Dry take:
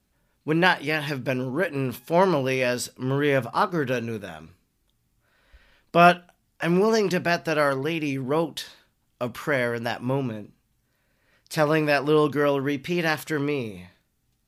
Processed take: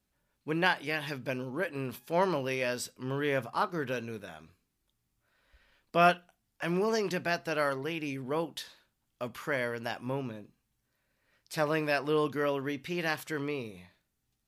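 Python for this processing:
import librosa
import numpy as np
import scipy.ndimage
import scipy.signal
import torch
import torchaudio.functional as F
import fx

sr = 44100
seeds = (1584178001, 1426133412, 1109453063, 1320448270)

y = fx.low_shelf(x, sr, hz=380.0, db=-3.5)
y = F.gain(torch.from_numpy(y), -7.0).numpy()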